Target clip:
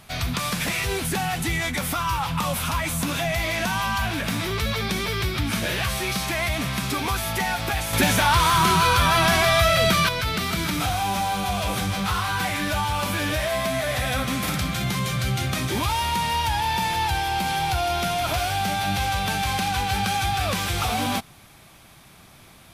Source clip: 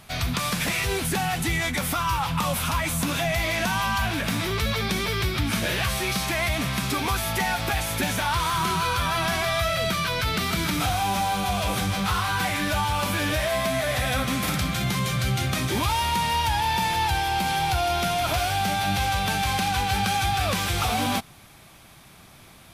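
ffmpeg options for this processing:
-filter_complex "[0:a]asettb=1/sr,asplit=3[a][b][c];[a]atrim=end=7.934[d];[b]atrim=start=7.93:end=10.09,asetpts=PTS-STARTPTS,afade=t=in:d=0.004:c=qsin,afade=t=out:st=2.156:d=0.004:c=qsin,acontrast=59[e];[c]atrim=start=10.086[f];[d][e]acrossfade=d=0.004:c1=hsin:c2=qsin[g];[g][f]acrossfade=d=0.004:c1=qsin:c2=hsin"

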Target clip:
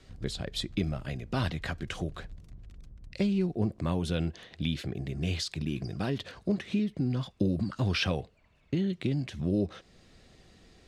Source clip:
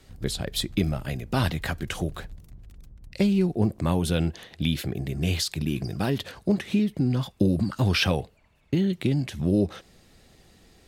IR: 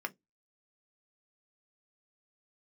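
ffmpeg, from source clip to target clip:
-filter_complex "[0:a]lowpass=6.8k,bandreject=f=850:w=12,asplit=2[a][b];[b]acompressor=threshold=-40dB:ratio=6,volume=-2dB[c];[a][c]amix=inputs=2:normalize=0,volume=-6.5dB"

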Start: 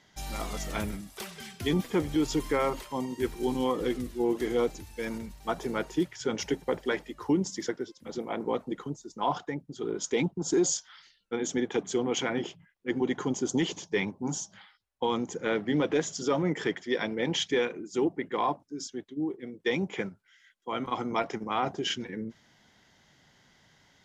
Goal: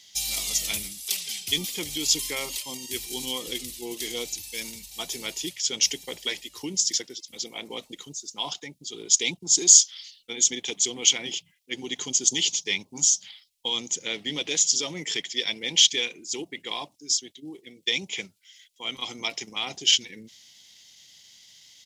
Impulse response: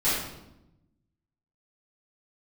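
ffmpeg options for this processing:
-af "atempo=1.1,aexciter=amount=15.5:drive=3.7:freq=2.3k,volume=-9dB"

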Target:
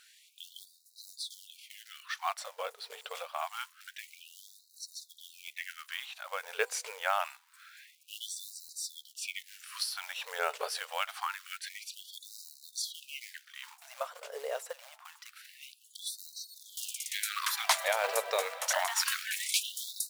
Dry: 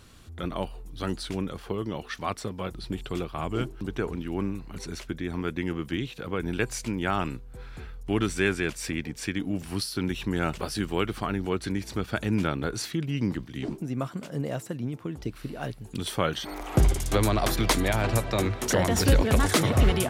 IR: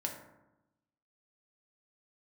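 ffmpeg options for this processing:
-af "acrusher=bits=5:mode=log:mix=0:aa=0.000001,afftfilt=real='re*gte(b*sr/1024,410*pow(3800/410,0.5+0.5*sin(2*PI*0.26*pts/sr)))':imag='im*gte(b*sr/1024,410*pow(3800/410,0.5+0.5*sin(2*PI*0.26*pts/sr)))':win_size=1024:overlap=0.75,volume=-1.5dB"

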